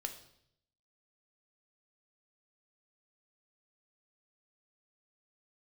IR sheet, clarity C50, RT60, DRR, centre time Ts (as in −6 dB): 10.5 dB, 0.70 s, 5.5 dB, 13 ms